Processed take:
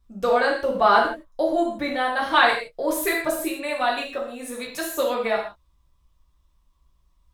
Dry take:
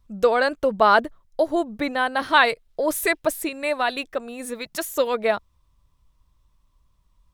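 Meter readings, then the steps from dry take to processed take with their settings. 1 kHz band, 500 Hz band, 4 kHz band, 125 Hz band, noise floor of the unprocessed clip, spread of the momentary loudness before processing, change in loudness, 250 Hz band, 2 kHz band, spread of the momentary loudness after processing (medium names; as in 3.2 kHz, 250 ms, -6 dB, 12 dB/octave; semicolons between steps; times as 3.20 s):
+0.5 dB, -1.0 dB, 0.0 dB, no reading, -65 dBFS, 13 LU, -0.5 dB, 0.0 dB, -0.5 dB, 13 LU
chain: gated-style reverb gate 190 ms falling, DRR -3.5 dB; trim -5.5 dB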